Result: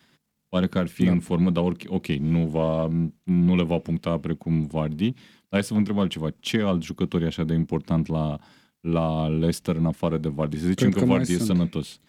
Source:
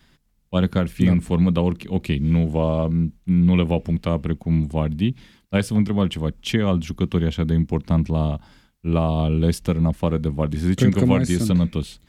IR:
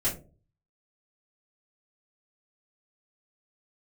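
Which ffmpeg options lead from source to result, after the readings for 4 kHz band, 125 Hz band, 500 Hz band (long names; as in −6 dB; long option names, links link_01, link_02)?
−1.5 dB, −4.5 dB, −1.5 dB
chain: -af "aeval=exprs='if(lt(val(0),0),0.708*val(0),val(0))':channel_layout=same,highpass=150"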